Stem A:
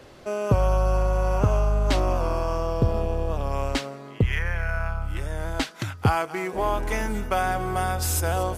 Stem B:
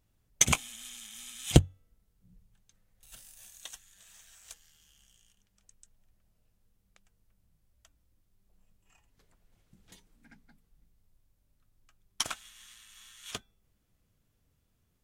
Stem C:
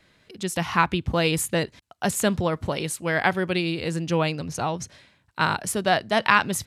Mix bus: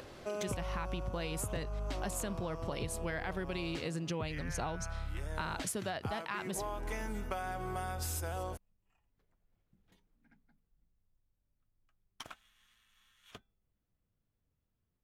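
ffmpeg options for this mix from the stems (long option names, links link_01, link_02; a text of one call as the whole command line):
ffmpeg -i stem1.wav -i stem2.wav -i stem3.wav -filter_complex "[0:a]acompressor=mode=upward:threshold=-38dB:ratio=2.5,volume=-7dB[link_01];[1:a]equalizer=frequency=7900:width_type=o:width=2:gain=-14.5,volume=-9dB[link_02];[2:a]dynaudnorm=framelen=690:gausssize=3:maxgain=11.5dB,alimiter=limit=-11dB:level=0:latency=1:release=30,volume=-5dB[link_03];[link_01][link_02][link_03]amix=inputs=3:normalize=0,acompressor=threshold=-34dB:ratio=10" out.wav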